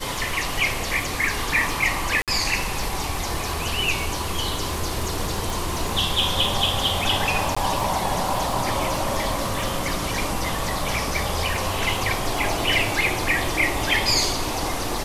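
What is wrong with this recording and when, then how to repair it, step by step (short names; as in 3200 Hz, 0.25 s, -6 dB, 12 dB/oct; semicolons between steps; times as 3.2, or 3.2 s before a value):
crackle 28/s -27 dBFS
2.22–2.28 gap 57 ms
5.5 pop
7.55–7.57 gap 15 ms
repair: de-click; interpolate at 2.22, 57 ms; interpolate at 7.55, 15 ms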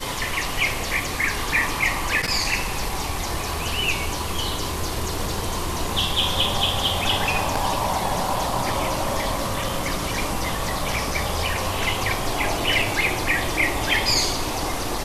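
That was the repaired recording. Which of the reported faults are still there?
none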